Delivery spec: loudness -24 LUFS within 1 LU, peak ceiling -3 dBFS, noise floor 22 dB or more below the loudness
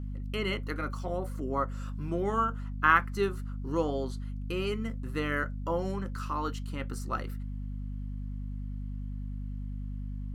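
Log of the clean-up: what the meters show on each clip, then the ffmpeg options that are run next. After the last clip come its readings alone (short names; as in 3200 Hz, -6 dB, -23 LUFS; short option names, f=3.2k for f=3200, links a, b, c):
hum 50 Hz; harmonics up to 250 Hz; hum level -34 dBFS; loudness -33.0 LUFS; peak -9.0 dBFS; loudness target -24.0 LUFS
-> -af "bandreject=f=50:t=h:w=4,bandreject=f=100:t=h:w=4,bandreject=f=150:t=h:w=4,bandreject=f=200:t=h:w=4,bandreject=f=250:t=h:w=4"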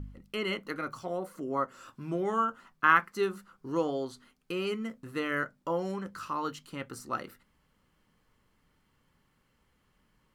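hum none; loudness -32.5 LUFS; peak -9.0 dBFS; loudness target -24.0 LUFS
-> -af "volume=8.5dB,alimiter=limit=-3dB:level=0:latency=1"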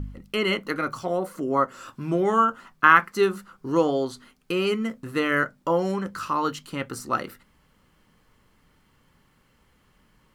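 loudness -24.5 LUFS; peak -3.0 dBFS; noise floor -63 dBFS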